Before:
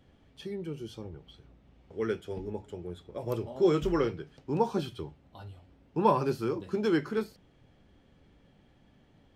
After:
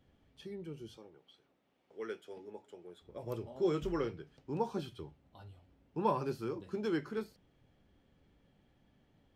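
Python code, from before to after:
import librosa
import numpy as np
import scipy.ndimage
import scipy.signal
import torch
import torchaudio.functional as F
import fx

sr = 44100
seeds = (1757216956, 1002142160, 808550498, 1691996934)

y = fx.bessel_highpass(x, sr, hz=400.0, order=2, at=(0.97, 3.02))
y = y * librosa.db_to_amplitude(-7.5)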